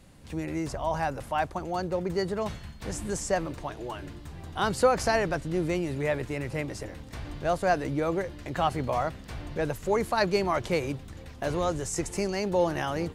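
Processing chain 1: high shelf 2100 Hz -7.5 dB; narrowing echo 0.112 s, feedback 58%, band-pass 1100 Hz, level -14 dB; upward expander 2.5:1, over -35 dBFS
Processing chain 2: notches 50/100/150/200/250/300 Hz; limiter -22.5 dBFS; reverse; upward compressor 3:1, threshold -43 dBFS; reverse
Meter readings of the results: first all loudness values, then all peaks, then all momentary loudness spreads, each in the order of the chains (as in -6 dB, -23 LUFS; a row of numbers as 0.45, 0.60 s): -39.0, -33.5 LUFS; -12.0, -22.5 dBFS; 18, 8 LU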